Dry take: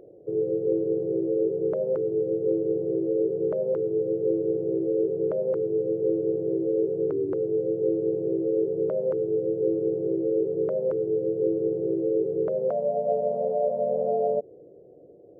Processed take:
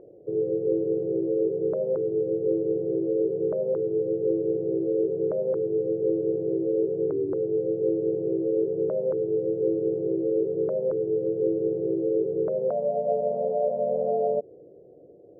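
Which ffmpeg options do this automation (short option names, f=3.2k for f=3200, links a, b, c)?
-af "asetnsamples=n=441:p=0,asendcmd='1.46 lowpass f 1200;4.88 lowpass f 1300;7.21 lowpass f 1200;8.09 lowpass f 1300;10.32 lowpass f 1200;11.27 lowpass f 1300',lowpass=1.3k"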